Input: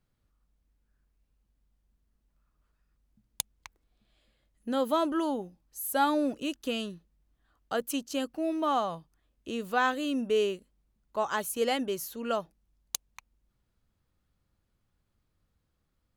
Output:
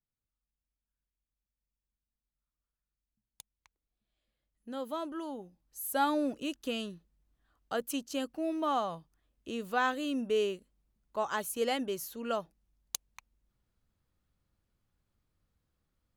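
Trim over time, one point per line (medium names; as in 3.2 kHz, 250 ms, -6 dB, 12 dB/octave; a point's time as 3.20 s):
3.55 s -19 dB
4.77 s -10 dB
5.28 s -10 dB
5.83 s -3 dB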